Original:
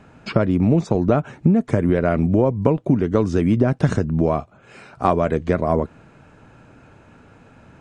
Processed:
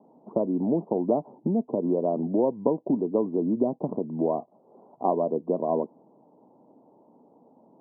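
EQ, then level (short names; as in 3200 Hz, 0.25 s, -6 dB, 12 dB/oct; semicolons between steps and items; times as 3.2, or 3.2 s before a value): HPF 220 Hz 24 dB/oct; steep low-pass 990 Hz 72 dB/oct; -5.0 dB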